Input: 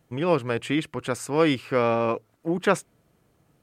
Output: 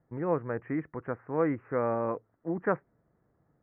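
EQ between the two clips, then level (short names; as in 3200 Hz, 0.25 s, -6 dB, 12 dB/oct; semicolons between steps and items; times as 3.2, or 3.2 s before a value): elliptic low-pass 1900 Hz, stop band 50 dB; air absorption 240 m; -5.5 dB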